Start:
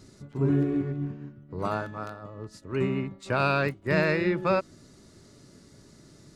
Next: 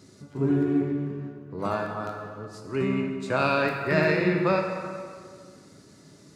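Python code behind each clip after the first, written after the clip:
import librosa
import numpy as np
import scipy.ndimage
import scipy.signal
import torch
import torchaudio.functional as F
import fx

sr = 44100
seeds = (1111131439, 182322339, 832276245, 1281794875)

y = scipy.signal.sosfilt(scipy.signal.butter(2, 110.0, 'highpass', fs=sr, output='sos'), x)
y = fx.rev_plate(y, sr, seeds[0], rt60_s=2.0, hf_ratio=0.75, predelay_ms=0, drr_db=2.0)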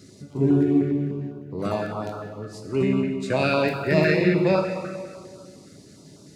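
y = fx.filter_held_notch(x, sr, hz=9.9, low_hz=920.0, high_hz=1900.0)
y = F.gain(torch.from_numpy(y), 4.5).numpy()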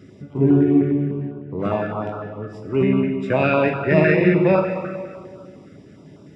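y = scipy.signal.savgol_filter(x, 25, 4, mode='constant')
y = F.gain(torch.from_numpy(y), 4.0).numpy()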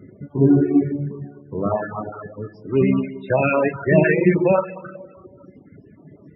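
y = fx.dereverb_blind(x, sr, rt60_s=1.5)
y = fx.spec_topn(y, sr, count=32)
y = F.gain(torch.from_numpy(y), 2.0).numpy()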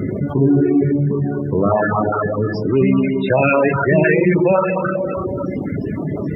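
y = fx.env_flatten(x, sr, amount_pct=70)
y = F.gain(torch.from_numpy(y), -1.0).numpy()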